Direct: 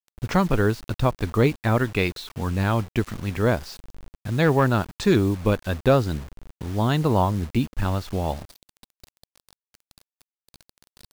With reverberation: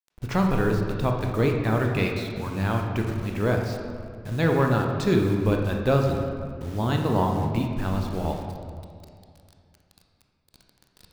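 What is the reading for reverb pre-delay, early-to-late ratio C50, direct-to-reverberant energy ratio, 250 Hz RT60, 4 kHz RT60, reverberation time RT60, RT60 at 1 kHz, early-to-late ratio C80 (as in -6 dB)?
19 ms, 3.5 dB, 2.0 dB, 2.4 s, 1.2 s, 2.2 s, 2.1 s, 5.0 dB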